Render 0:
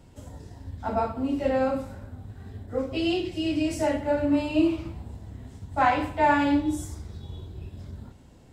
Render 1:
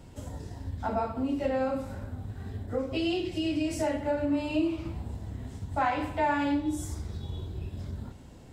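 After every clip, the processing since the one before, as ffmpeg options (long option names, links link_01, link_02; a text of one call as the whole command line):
ffmpeg -i in.wav -af "acompressor=threshold=-34dB:ratio=2,volume=3dB" out.wav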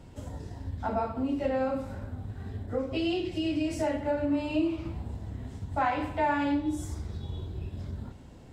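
ffmpeg -i in.wav -af "highshelf=frequency=6300:gain=-6.5" out.wav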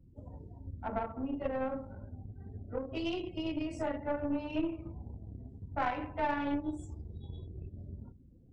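ffmpeg -i in.wav -af "afftdn=noise_reduction=29:noise_floor=-45,aeval=exprs='0.168*(cos(1*acos(clip(val(0)/0.168,-1,1)))-cos(1*PI/2))+0.0422*(cos(2*acos(clip(val(0)/0.168,-1,1)))-cos(2*PI/2))+0.0133*(cos(3*acos(clip(val(0)/0.168,-1,1)))-cos(3*PI/2))+0.00376*(cos(7*acos(clip(val(0)/0.168,-1,1)))-cos(7*PI/2))':channel_layout=same,volume=-4dB" out.wav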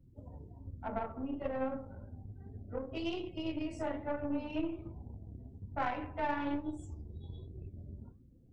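ffmpeg -i in.wav -af "flanger=delay=7.4:depth=6.6:regen=81:speed=1.2:shape=sinusoidal,volume=2.5dB" out.wav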